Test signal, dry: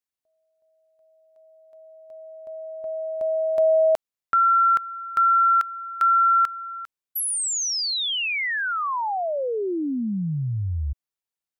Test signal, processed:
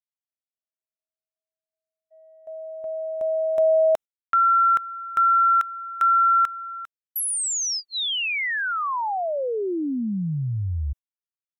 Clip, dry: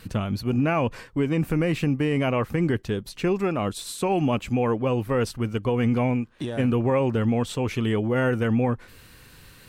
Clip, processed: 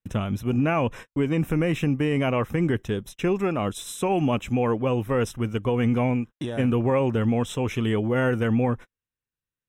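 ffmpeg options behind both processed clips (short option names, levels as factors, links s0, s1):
-af "agate=range=0.00562:threshold=0.00891:ratio=16:release=154:detection=peak,asuperstop=centerf=4500:order=8:qfactor=4.3"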